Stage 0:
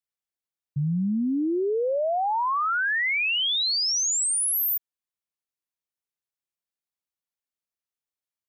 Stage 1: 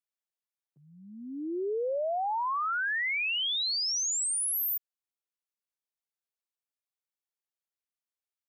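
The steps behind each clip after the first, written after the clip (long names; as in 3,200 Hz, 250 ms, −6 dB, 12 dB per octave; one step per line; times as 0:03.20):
high-pass filter 340 Hz 24 dB per octave
level −5.5 dB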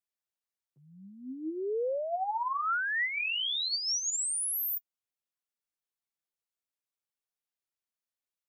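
flanger 0.95 Hz, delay 5.4 ms, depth 5 ms, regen +38%
level +2 dB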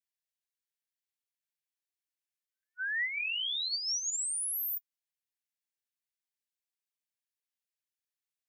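linear-phase brick-wall high-pass 1,500 Hz
level −2 dB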